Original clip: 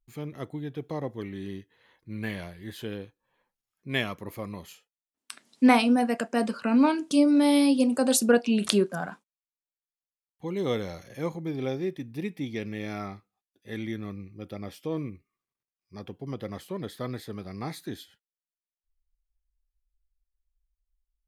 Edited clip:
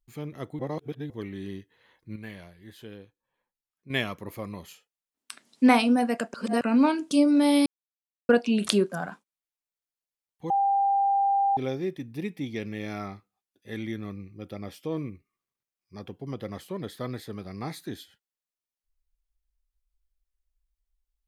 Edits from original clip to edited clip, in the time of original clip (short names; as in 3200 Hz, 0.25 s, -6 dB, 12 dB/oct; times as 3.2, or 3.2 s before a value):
0.59–1.1 reverse
2.16–3.9 gain -8 dB
6.34–6.61 reverse
7.66–8.29 mute
10.5–11.57 bleep 794 Hz -20 dBFS